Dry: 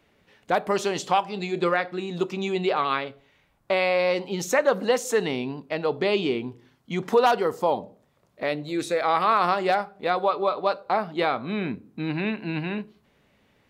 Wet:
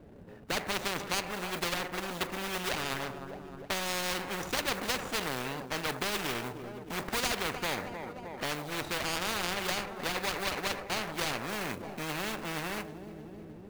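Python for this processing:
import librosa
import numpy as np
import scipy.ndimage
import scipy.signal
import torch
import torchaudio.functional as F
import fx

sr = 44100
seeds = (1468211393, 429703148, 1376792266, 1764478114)

y = scipy.signal.medfilt(x, 41)
y = fx.high_shelf(y, sr, hz=2500.0, db=-6.5)
y = fx.quant_float(y, sr, bits=4)
y = fx.echo_feedback(y, sr, ms=309, feedback_pct=56, wet_db=-22)
y = fx.spectral_comp(y, sr, ratio=4.0)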